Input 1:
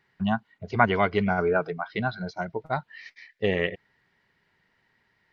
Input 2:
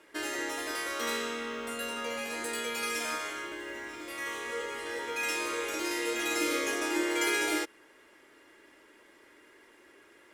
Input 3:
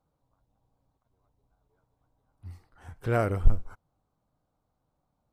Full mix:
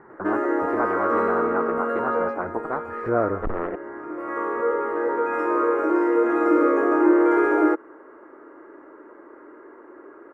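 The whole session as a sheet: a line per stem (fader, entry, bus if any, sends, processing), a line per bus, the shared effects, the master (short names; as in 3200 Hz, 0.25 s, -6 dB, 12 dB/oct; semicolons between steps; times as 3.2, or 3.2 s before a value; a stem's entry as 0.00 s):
-12.0 dB, 0.00 s, no send, high shelf 2100 Hz -7.5 dB; spectral compressor 4:1
+2.0 dB, 0.10 s, no send, auto duck -10 dB, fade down 0.20 s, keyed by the third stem
-6.0 dB, 0.00 s, no send, dry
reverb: off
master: soft clip -22 dBFS, distortion -14 dB; EQ curve 140 Hz 0 dB, 320 Hz +15 dB, 820 Hz +11 dB, 1300 Hz +14 dB, 3400 Hz -28 dB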